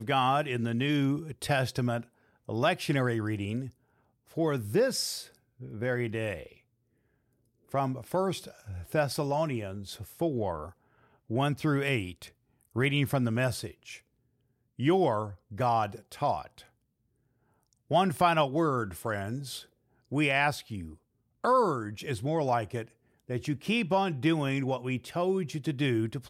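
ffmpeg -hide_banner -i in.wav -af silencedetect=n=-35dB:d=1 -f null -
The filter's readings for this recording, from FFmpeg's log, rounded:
silence_start: 6.43
silence_end: 7.74 | silence_duration: 1.31
silence_start: 16.42
silence_end: 17.91 | silence_duration: 1.49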